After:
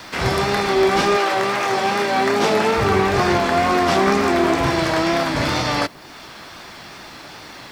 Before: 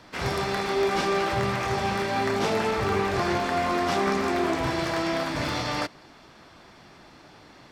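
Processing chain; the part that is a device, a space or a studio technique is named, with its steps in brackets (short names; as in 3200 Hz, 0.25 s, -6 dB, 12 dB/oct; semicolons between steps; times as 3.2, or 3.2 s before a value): noise-reduction cassette on a plain deck (mismatched tape noise reduction encoder only; wow and flutter; white noise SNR 38 dB); 1.16–2.73 HPF 390 Hz -> 150 Hz 12 dB/oct; gain +8 dB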